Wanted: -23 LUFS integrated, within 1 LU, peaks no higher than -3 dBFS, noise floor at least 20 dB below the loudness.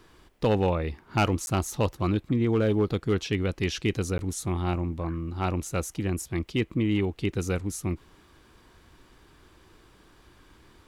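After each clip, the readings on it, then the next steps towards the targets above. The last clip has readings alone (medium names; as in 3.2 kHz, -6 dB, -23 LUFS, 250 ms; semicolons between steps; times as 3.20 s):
clipped samples 0.3%; clipping level -16.0 dBFS; dropouts 2; longest dropout 11 ms; loudness -28.0 LUFS; peak level -16.0 dBFS; loudness target -23.0 LUFS
-> clip repair -16 dBFS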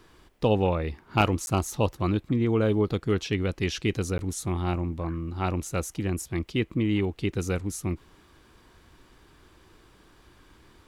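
clipped samples 0.0%; dropouts 2; longest dropout 11 ms
-> interpolate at 1.46/4.18 s, 11 ms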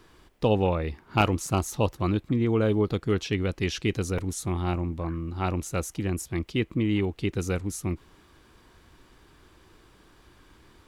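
dropouts 0; loudness -28.0 LUFS; peak level -7.0 dBFS; loudness target -23.0 LUFS
-> trim +5 dB; peak limiter -3 dBFS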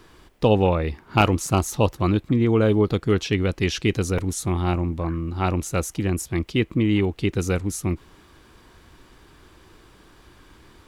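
loudness -23.0 LUFS; peak level -3.0 dBFS; noise floor -53 dBFS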